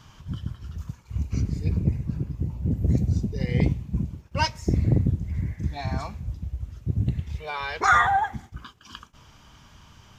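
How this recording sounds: noise floor -53 dBFS; spectral tilt -5.5 dB/octave

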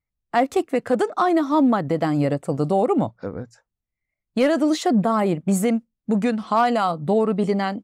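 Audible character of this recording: noise floor -85 dBFS; spectral tilt -6.0 dB/octave

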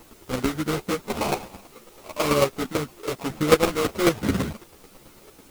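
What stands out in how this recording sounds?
aliases and images of a low sample rate 1.7 kHz, jitter 20%; chopped level 9.1 Hz, depth 65%, duty 10%; a quantiser's noise floor 10-bit, dither triangular; a shimmering, thickened sound

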